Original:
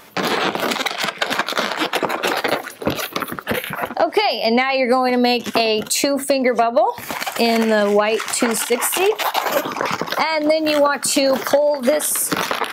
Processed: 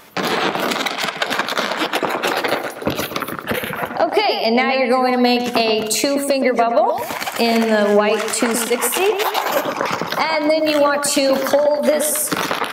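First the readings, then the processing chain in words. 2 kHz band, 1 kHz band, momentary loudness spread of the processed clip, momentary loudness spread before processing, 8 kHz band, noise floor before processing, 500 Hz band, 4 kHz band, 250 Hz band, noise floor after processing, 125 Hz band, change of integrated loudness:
+0.5 dB, +1.0 dB, 7 LU, 6 LU, 0.0 dB, -36 dBFS, +1.0 dB, 0.0 dB, +1.0 dB, -30 dBFS, +1.5 dB, +0.5 dB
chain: filtered feedback delay 122 ms, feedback 41%, low-pass 2.1 kHz, level -6.5 dB

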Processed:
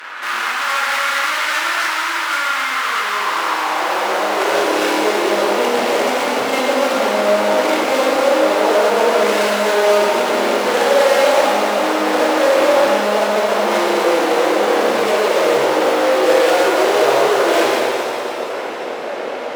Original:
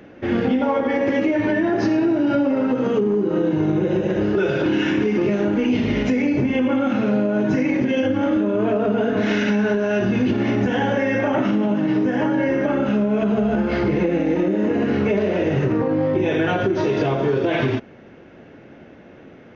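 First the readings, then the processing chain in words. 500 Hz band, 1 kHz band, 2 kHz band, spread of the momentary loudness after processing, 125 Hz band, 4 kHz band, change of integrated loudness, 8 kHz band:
+6.5 dB, +13.0 dB, +9.5 dB, 5 LU, under -15 dB, +14.0 dB, +4.5 dB, no reading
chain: fuzz box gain 39 dB, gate -46 dBFS; high-pass sweep 1.3 kHz -> 510 Hz, 2.82–4.83 s; pitch-shifted reverb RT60 2.4 s, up +7 st, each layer -8 dB, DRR -2 dB; trim -6.5 dB

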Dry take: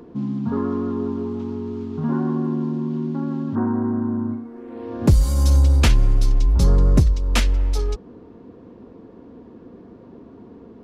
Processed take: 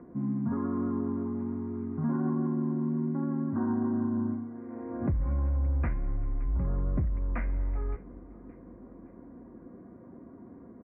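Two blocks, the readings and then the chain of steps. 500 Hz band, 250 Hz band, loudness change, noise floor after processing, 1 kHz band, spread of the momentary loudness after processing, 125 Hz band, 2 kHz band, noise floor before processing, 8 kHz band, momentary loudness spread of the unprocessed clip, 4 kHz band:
-10.0 dB, -6.5 dB, -10.5 dB, -50 dBFS, -9.0 dB, 20 LU, -11.5 dB, -14.5 dB, -45 dBFS, under -40 dB, 12 LU, under -40 dB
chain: steep low-pass 2.2 kHz 72 dB/octave; de-hum 106.3 Hz, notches 34; peak limiter -16 dBFS, peak gain reduction 10 dB; comb of notches 440 Hz; feedback delay 569 ms, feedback 45%, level -21 dB; trim -5 dB

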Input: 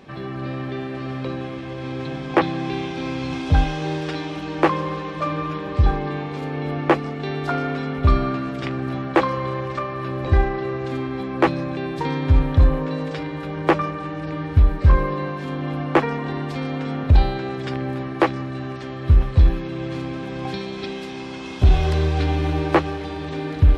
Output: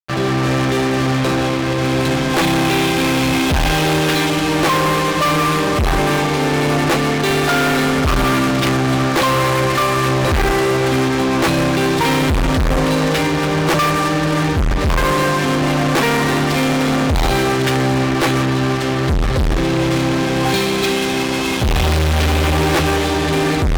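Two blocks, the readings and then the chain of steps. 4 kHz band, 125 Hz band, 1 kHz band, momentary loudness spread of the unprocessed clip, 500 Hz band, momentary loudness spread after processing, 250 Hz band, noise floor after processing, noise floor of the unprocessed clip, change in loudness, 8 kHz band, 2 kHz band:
+15.5 dB, +3.5 dB, +8.5 dB, 11 LU, +8.0 dB, 2 LU, +8.5 dB, -18 dBFS, -32 dBFS, +7.0 dB, no reading, +11.5 dB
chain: hum notches 50/100/150/200/250/300 Hz; dynamic bell 2.6 kHz, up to +5 dB, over -38 dBFS, Q 0.71; fuzz box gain 34 dB, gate -37 dBFS

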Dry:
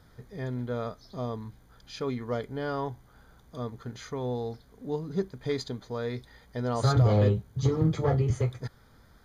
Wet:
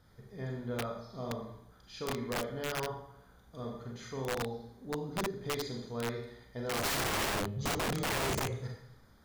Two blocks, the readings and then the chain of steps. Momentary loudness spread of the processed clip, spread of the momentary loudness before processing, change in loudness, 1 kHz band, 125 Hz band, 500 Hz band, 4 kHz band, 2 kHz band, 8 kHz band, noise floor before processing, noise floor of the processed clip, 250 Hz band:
14 LU, 17 LU, -6.0 dB, -1.0 dB, -12.5 dB, -6.0 dB, +4.5 dB, +5.5 dB, +8.0 dB, -58 dBFS, -61 dBFS, -7.0 dB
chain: Schroeder reverb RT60 0.75 s, combs from 30 ms, DRR -0.5 dB; integer overflow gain 20.5 dB; trim -7 dB

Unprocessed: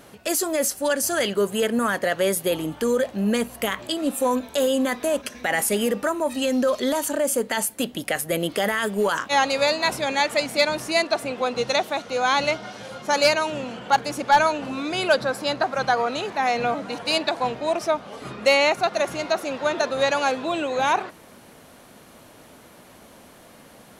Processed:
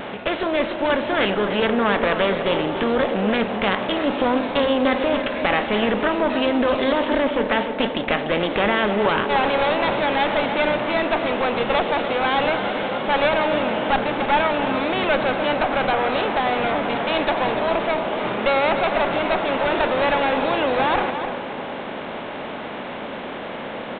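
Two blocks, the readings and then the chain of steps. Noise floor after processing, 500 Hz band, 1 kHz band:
-31 dBFS, +2.5 dB, +3.0 dB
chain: spectral levelling over time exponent 0.6; one-sided clip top -22 dBFS; delay 294 ms -10.5 dB; vibrato 3.7 Hz 52 cents; feedback echo behind a band-pass 98 ms, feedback 84%, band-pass 510 Hz, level -11.5 dB; resampled via 8 kHz

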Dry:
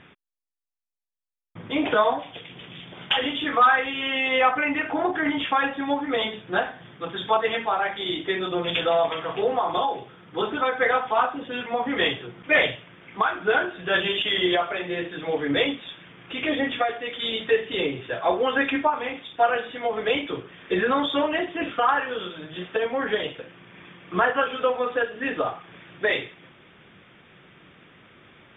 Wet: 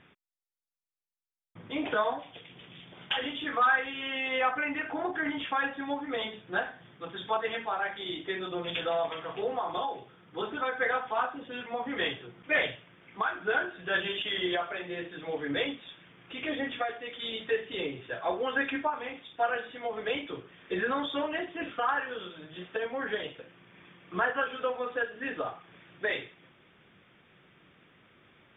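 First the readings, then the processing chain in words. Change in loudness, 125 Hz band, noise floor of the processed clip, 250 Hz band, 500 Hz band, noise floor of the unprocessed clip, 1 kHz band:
-7.5 dB, -8.5 dB, -63 dBFS, -8.5 dB, -8.5 dB, -55 dBFS, -8.0 dB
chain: dynamic bell 1.6 kHz, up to +5 dB, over -39 dBFS, Q 5.4; trim -8.5 dB

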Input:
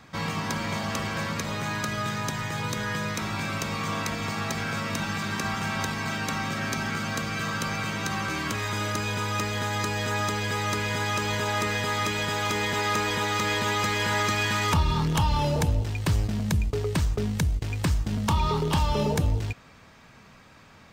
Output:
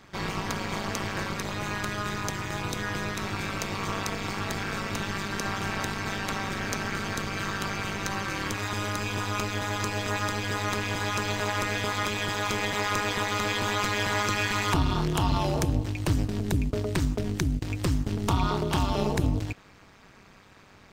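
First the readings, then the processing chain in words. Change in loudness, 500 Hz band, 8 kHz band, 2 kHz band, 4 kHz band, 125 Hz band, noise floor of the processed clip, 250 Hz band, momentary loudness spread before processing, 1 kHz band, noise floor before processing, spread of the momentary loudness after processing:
-1.5 dB, -1.0 dB, -1.5 dB, -1.5 dB, -1.5 dB, -2.5 dB, -53 dBFS, -0.5 dB, 5 LU, -1.5 dB, -52 dBFS, 5 LU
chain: AM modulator 200 Hz, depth 95%; trim +2.5 dB

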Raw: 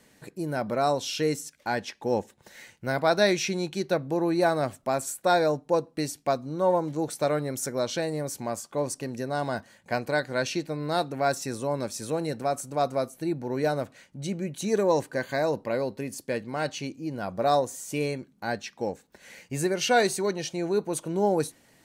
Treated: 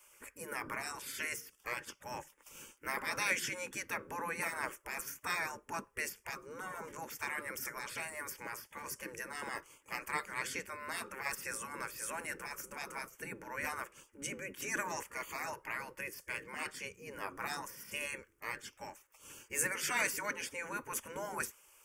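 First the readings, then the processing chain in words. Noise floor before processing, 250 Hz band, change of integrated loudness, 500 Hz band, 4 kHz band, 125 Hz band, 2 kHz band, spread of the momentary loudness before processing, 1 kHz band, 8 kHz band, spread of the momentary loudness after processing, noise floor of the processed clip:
-62 dBFS, -20.5 dB, -11.5 dB, -21.0 dB, -11.0 dB, -21.5 dB, -3.5 dB, 9 LU, -12.5 dB, -5.0 dB, 10 LU, -69 dBFS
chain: static phaser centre 1.7 kHz, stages 4; spectral gate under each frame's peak -15 dB weak; trim +5.5 dB

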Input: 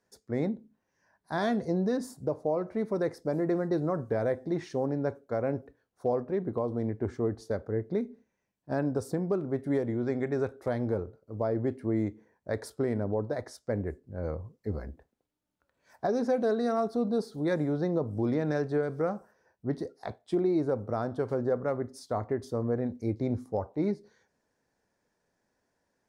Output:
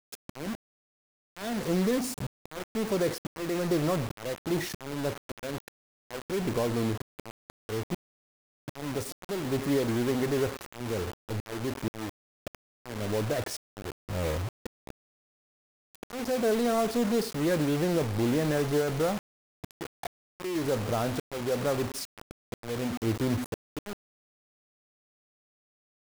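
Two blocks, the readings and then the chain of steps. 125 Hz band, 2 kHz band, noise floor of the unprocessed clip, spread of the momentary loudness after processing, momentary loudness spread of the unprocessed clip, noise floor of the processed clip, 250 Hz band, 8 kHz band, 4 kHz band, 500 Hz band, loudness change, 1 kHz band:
+0.5 dB, +4.0 dB, -80 dBFS, 16 LU, 8 LU, under -85 dBFS, -0.5 dB, no reading, +12.0 dB, -1.0 dB, +0.5 dB, +0.5 dB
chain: jump at every zero crossing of -33 dBFS; slow attack 439 ms; word length cut 6-bit, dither none

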